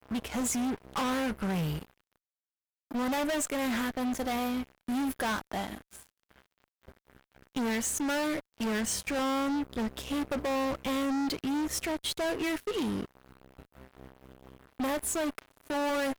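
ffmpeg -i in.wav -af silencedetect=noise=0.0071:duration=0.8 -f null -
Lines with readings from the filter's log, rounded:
silence_start: 1.85
silence_end: 2.91 | silence_duration: 1.06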